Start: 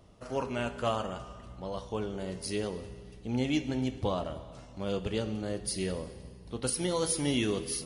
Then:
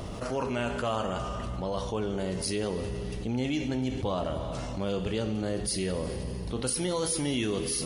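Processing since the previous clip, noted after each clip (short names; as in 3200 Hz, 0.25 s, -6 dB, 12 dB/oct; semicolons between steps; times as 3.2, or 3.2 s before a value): fast leveller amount 70%; gain -2.5 dB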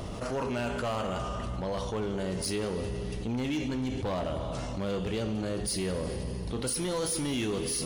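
overloaded stage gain 26.5 dB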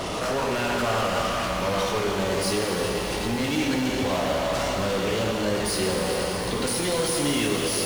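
overdrive pedal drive 23 dB, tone 7500 Hz, clips at -26 dBFS; shimmer reverb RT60 3.5 s, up +12 st, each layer -8 dB, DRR 1.5 dB; gain +3 dB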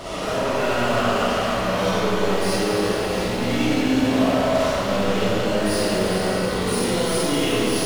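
reverb RT60 2.3 s, pre-delay 10 ms, DRR -9 dB; gain -6 dB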